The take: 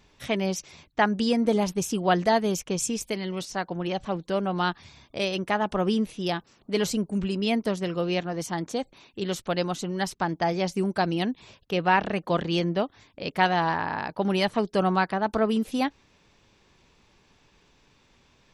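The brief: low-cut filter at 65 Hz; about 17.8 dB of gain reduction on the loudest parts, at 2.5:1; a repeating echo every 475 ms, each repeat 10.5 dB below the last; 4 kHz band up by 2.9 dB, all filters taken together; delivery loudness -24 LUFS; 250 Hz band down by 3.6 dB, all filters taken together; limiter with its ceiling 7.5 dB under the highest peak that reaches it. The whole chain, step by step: high-pass 65 Hz; peaking EQ 250 Hz -5 dB; peaking EQ 4 kHz +4 dB; compression 2.5:1, threshold -45 dBFS; peak limiter -31 dBFS; feedback delay 475 ms, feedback 30%, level -10.5 dB; trim +19 dB

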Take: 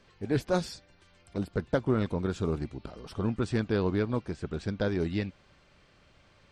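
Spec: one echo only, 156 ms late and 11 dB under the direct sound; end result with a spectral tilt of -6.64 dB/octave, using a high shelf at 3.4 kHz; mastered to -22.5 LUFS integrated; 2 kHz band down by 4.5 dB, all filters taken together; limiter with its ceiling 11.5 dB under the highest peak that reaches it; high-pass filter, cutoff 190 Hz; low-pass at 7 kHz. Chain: high-pass 190 Hz; low-pass 7 kHz; peaking EQ 2 kHz -4.5 dB; treble shelf 3.4 kHz -7 dB; peak limiter -25.5 dBFS; delay 156 ms -11 dB; trim +15.5 dB

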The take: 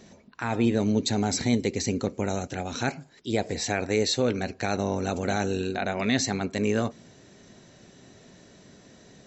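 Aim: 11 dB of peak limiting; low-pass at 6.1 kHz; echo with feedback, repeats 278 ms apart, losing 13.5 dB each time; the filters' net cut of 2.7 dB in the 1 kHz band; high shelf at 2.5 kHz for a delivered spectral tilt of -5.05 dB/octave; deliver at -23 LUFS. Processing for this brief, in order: low-pass 6.1 kHz; peaking EQ 1 kHz -3.5 dB; treble shelf 2.5 kHz -4.5 dB; peak limiter -23 dBFS; feedback delay 278 ms, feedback 21%, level -13.5 dB; trim +11 dB

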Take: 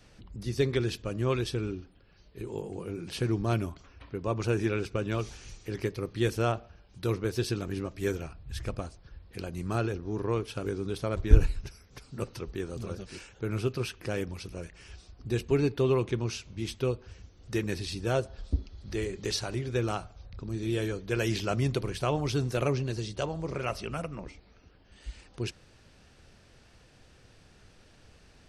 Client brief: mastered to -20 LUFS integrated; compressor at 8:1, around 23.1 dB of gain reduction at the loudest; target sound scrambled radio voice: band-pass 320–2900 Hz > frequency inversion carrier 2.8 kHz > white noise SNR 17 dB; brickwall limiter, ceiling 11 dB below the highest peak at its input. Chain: compression 8:1, threshold -34 dBFS; peak limiter -33 dBFS; band-pass 320–2900 Hz; frequency inversion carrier 2.8 kHz; white noise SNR 17 dB; trim +25.5 dB

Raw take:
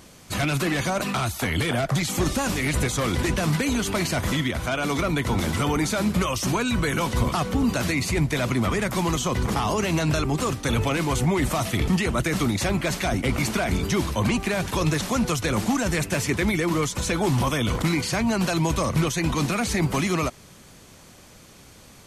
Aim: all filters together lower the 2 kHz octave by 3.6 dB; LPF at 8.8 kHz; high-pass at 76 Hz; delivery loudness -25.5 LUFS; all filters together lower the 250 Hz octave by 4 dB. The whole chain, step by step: high-pass 76 Hz; low-pass 8.8 kHz; peaking EQ 250 Hz -5.5 dB; peaking EQ 2 kHz -4.5 dB; trim +1 dB

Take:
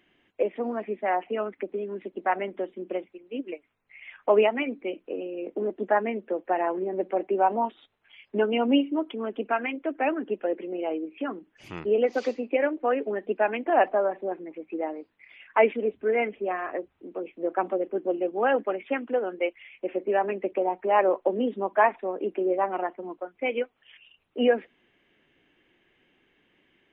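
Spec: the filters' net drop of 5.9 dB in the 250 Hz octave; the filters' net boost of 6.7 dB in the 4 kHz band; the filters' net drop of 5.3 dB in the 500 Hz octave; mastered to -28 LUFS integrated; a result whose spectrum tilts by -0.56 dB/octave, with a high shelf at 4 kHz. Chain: peaking EQ 250 Hz -5.5 dB; peaking EQ 500 Hz -5.5 dB; treble shelf 4 kHz +6 dB; peaking EQ 4 kHz +8.5 dB; trim +2.5 dB

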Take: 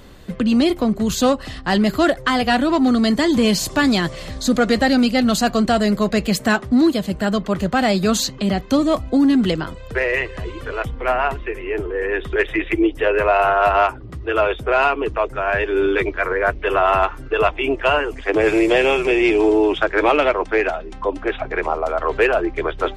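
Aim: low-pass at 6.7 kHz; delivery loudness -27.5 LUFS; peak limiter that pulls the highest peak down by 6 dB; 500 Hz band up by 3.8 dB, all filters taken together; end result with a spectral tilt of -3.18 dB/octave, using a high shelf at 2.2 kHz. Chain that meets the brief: low-pass 6.7 kHz; peaking EQ 500 Hz +4.5 dB; treble shelf 2.2 kHz +6 dB; trim -10 dB; peak limiter -17 dBFS

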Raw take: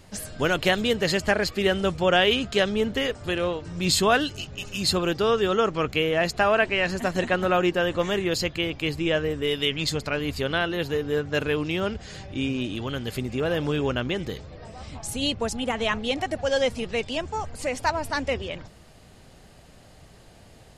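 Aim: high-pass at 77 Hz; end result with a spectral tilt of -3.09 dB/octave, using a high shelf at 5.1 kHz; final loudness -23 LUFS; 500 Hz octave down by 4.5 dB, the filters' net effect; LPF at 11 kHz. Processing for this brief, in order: high-pass 77 Hz; low-pass 11 kHz; peaking EQ 500 Hz -5.5 dB; treble shelf 5.1 kHz -8 dB; trim +4.5 dB

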